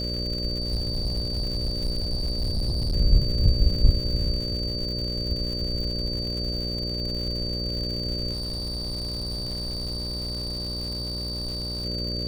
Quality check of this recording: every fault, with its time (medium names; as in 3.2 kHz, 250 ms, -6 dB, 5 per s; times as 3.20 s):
buzz 60 Hz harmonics 10 -31 dBFS
crackle 220 per s -33 dBFS
whine 4.6 kHz -30 dBFS
0.60–2.94 s: clipped -22 dBFS
8.32–11.85 s: clipped -27 dBFS